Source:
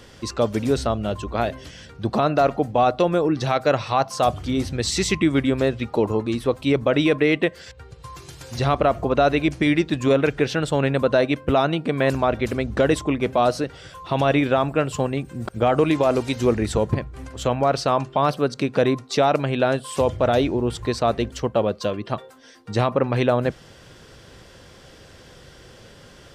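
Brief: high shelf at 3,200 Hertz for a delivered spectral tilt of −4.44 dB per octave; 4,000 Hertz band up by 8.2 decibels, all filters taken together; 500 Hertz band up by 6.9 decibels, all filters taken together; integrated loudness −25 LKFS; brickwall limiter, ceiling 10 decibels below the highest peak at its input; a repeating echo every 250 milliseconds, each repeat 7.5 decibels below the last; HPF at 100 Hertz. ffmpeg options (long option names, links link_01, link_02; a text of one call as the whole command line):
ffmpeg -i in.wav -af "highpass=100,equalizer=frequency=500:width_type=o:gain=8,highshelf=frequency=3200:gain=7.5,equalizer=frequency=4000:width_type=o:gain=4.5,alimiter=limit=-11dB:level=0:latency=1,aecho=1:1:250|500|750|1000|1250:0.422|0.177|0.0744|0.0312|0.0131,volume=-3.5dB" out.wav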